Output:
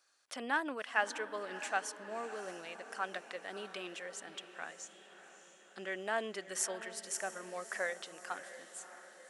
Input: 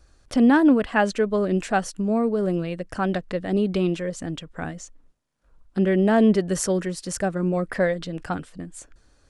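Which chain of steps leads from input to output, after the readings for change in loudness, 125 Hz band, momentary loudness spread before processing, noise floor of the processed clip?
−17.0 dB, −34.0 dB, 15 LU, −61 dBFS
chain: Bessel high-pass filter 1,200 Hz, order 2
dynamic equaliser 4,500 Hz, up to −5 dB, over −51 dBFS, Q 2.5
feedback delay with all-pass diffusion 628 ms, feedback 56%, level −12.5 dB
level −6 dB

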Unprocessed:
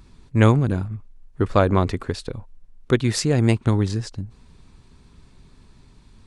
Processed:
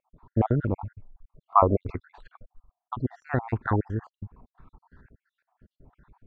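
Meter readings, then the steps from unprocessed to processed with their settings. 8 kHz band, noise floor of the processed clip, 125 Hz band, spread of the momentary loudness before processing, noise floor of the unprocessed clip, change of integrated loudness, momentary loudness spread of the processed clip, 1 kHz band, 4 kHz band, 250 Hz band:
below −40 dB, below −85 dBFS, −9.0 dB, 19 LU, −52 dBFS, −6.0 dB, 20 LU, +2.0 dB, below −30 dB, −9.0 dB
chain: time-frequency cells dropped at random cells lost 60%
dynamic equaliser 170 Hz, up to −4 dB, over −35 dBFS, Q 1.5
low-pass on a step sequencer 5.9 Hz 590–1,600 Hz
level −2.5 dB

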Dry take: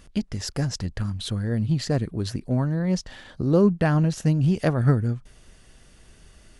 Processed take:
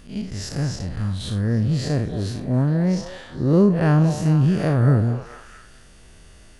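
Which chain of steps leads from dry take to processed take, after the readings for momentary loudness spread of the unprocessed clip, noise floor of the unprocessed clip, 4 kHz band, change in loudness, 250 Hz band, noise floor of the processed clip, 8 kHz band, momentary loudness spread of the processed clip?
10 LU, −53 dBFS, 0.0 dB, +3.5 dB, +3.0 dB, −47 dBFS, 0.0 dB, 11 LU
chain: spectrum smeared in time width 120 ms
echo through a band-pass that steps 222 ms, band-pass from 640 Hz, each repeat 0.7 octaves, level −6 dB
level +5 dB

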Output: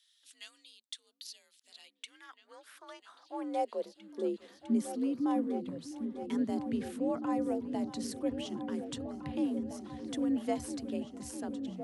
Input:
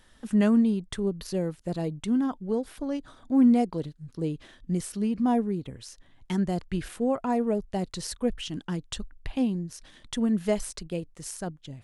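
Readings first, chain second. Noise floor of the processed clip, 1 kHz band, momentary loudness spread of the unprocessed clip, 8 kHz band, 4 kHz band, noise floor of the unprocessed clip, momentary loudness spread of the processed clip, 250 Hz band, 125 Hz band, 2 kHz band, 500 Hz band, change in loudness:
−71 dBFS, −5.0 dB, 15 LU, −8.0 dB, −6.5 dB, −58 dBFS, 19 LU, −8.5 dB, −16.5 dB, −9.0 dB, −7.5 dB, −7.5 dB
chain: frequency shifter +53 Hz
high-pass filter sweep 3,700 Hz → 140 Hz, 0:01.61–0:05.22
echo whose low-pass opens from repeat to repeat 654 ms, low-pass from 200 Hz, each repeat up 2 octaves, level −6 dB
level −8.5 dB

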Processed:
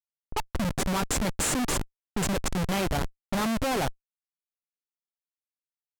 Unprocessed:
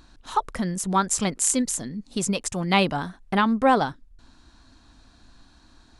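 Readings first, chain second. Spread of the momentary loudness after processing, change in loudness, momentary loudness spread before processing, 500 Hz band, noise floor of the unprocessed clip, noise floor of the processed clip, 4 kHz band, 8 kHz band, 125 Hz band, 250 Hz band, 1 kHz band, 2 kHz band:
7 LU, −5.0 dB, 9 LU, −4.5 dB, −56 dBFS, below −85 dBFS, −3.0 dB, −5.5 dB, −1.0 dB, −5.0 dB, −8.0 dB, −4.0 dB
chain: comparator with hysteresis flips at −25.5 dBFS
low-pass that shuts in the quiet parts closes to 750 Hz, open at −27 dBFS

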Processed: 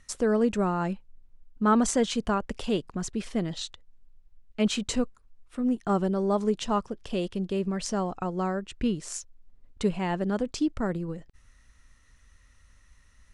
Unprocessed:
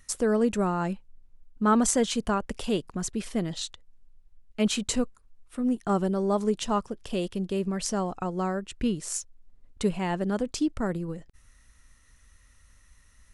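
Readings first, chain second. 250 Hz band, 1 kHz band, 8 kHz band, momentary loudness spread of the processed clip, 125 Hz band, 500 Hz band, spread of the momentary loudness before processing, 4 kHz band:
0.0 dB, 0.0 dB, −4.0 dB, 10 LU, 0.0 dB, 0.0 dB, 10 LU, −1.0 dB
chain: Bessel low-pass filter 6,400 Hz, order 2

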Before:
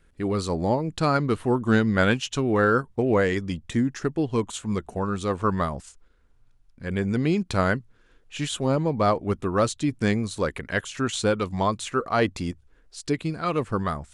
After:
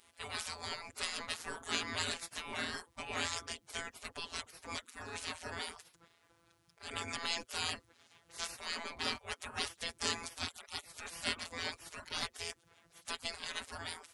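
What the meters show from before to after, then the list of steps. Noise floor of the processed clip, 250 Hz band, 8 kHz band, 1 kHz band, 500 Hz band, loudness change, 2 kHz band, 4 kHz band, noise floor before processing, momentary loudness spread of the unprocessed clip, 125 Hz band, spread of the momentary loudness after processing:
−71 dBFS, −26.5 dB, −5.0 dB, −16.5 dB, −24.0 dB, −14.5 dB, −10.5 dB, −2.0 dB, −59 dBFS, 8 LU, −27.0 dB, 8 LU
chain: phases set to zero 168 Hz
gate on every frequency bin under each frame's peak −30 dB weak
level +10.5 dB

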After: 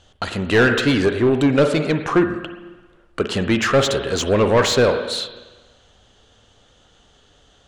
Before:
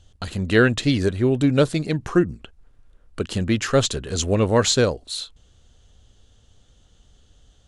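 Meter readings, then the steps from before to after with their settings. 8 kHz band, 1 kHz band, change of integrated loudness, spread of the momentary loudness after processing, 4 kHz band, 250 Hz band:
−2.0 dB, +6.0 dB, +3.0 dB, 11 LU, +2.5 dB, +2.0 dB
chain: spring reverb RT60 1.2 s, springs 44/49/58 ms, chirp 70 ms, DRR 10 dB
mid-hump overdrive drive 21 dB, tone 1,900 Hz, clips at −3 dBFS
level −2 dB

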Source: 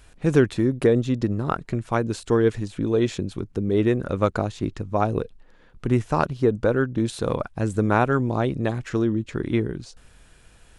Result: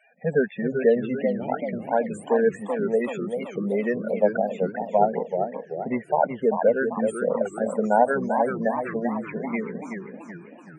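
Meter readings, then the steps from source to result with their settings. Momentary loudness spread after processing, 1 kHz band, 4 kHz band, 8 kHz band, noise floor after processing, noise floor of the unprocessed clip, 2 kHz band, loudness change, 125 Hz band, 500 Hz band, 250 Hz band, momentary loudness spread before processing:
9 LU, +3.0 dB, below −10 dB, can't be measured, −47 dBFS, −52 dBFS, 0.0 dB, −1.0 dB, −12.5 dB, +1.5 dB, −4.0 dB, 8 LU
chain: Butterworth high-pass 190 Hz 36 dB per octave
phaser with its sweep stopped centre 1,200 Hz, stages 6
spectral peaks only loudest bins 16
feedback echo with a swinging delay time 385 ms, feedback 50%, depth 209 cents, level −6.5 dB
level +5.5 dB

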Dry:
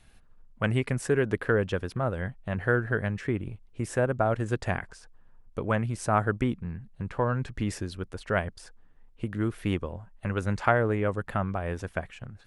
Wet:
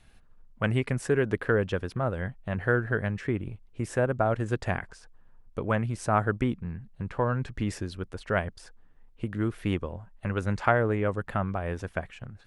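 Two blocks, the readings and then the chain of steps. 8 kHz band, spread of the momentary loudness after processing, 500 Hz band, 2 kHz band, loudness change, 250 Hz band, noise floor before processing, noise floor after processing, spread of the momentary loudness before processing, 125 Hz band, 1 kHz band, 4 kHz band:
−2.5 dB, 11 LU, 0.0 dB, 0.0 dB, 0.0 dB, 0.0 dB, −56 dBFS, −56 dBFS, 11 LU, 0.0 dB, 0.0 dB, −0.5 dB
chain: high-shelf EQ 8,100 Hz −5 dB

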